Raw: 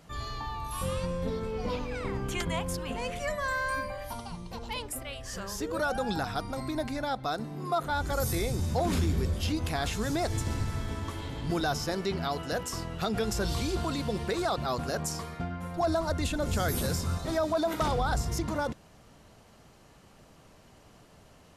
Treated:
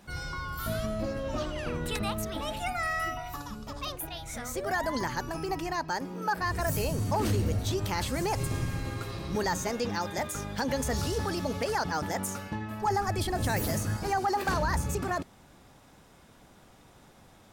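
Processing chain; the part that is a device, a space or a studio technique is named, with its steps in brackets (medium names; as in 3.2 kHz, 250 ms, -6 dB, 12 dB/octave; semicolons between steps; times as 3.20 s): nightcore (tape speed +23%)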